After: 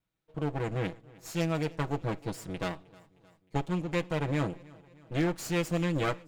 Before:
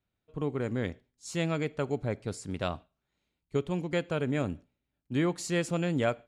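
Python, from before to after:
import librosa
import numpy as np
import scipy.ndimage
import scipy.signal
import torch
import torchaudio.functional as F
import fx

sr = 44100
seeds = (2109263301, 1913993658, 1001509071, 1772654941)

p1 = fx.lower_of_two(x, sr, delay_ms=6.2)
y = p1 + fx.echo_feedback(p1, sr, ms=310, feedback_pct=56, wet_db=-23.0, dry=0)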